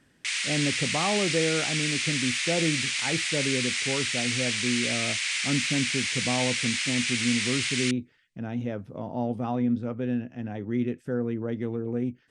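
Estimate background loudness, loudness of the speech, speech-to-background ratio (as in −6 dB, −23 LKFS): −26.5 LKFS, −30.5 LKFS, −4.0 dB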